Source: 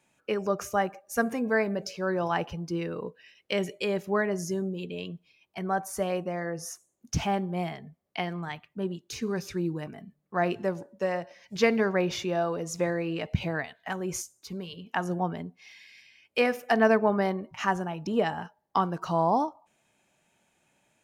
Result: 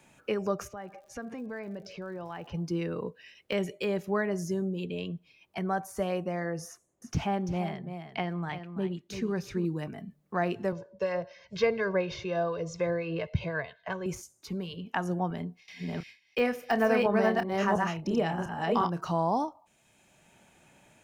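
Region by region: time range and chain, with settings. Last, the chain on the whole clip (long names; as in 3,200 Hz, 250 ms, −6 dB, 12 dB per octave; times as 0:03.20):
0:00.67–0:02.53: low-pass filter 4,500 Hz + downward compressor 2.5 to 1, threshold −46 dBFS + surface crackle 110 per second −55 dBFS
0:06.68–0:09.65: high-shelf EQ 4,200 Hz −7 dB + single-tap delay 338 ms −11.5 dB
0:10.72–0:14.06: low-pass filter 5,700 Hz 24 dB per octave + two-band tremolo in antiphase 4.1 Hz, depth 50%, crossover 1,100 Hz + comb filter 1.9 ms, depth 76%
0:15.30–0:19.11: delay that plays each chunk backwards 351 ms, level −1 dB + noise gate with hold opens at −38 dBFS, closes at −47 dBFS + double-tracking delay 29 ms −11 dB
whole clip: de-essing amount 80%; low-shelf EQ 140 Hz +6 dB; multiband upward and downward compressor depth 40%; level −2.5 dB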